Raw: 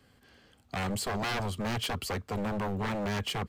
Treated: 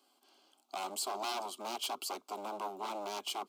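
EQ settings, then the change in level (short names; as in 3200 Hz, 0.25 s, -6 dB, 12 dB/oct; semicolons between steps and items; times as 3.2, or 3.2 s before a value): Chebyshev high-pass 380 Hz, order 3; fixed phaser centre 480 Hz, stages 6; 0.0 dB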